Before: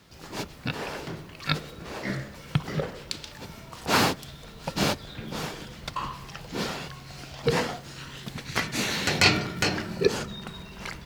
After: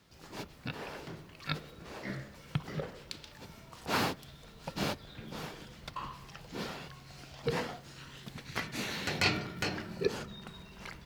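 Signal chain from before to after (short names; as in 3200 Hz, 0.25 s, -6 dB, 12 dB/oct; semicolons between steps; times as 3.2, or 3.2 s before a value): dynamic EQ 7300 Hz, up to -4 dB, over -47 dBFS, Q 0.99; gain -8.5 dB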